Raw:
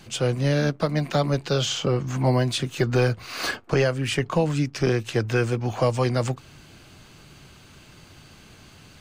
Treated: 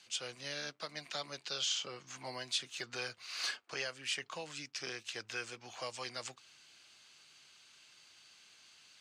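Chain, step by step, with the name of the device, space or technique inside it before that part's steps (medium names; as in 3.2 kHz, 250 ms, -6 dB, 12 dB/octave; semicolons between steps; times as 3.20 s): piezo pickup straight into a mixer (low-pass 5.2 kHz 12 dB/octave; differentiator)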